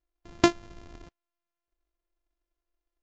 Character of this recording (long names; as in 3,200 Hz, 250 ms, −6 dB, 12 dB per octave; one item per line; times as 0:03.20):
a buzz of ramps at a fixed pitch in blocks of 128 samples
Ogg Vorbis